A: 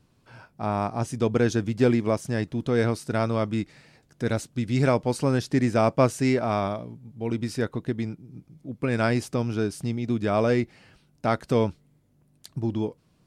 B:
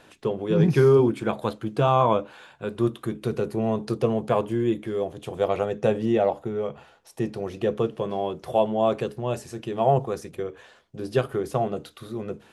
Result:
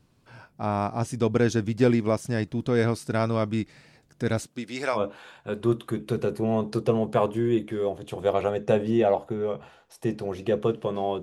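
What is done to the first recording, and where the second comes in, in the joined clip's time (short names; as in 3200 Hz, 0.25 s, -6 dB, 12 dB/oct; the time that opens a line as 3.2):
A
4.46–5.04 HPF 210 Hz -> 960 Hz
4.98 switch to B from 2.13 s, crossfade 0.12 s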